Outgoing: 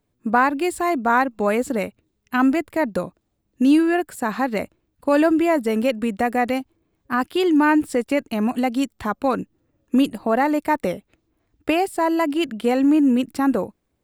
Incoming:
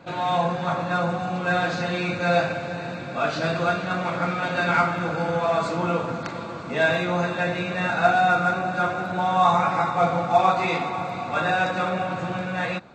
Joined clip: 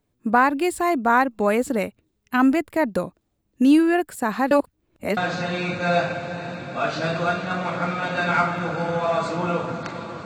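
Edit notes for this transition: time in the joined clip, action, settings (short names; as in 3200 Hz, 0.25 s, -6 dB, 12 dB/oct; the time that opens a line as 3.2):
outgoing
4.51–5.17 reverse
5.17 switch to incoming from 1.57 s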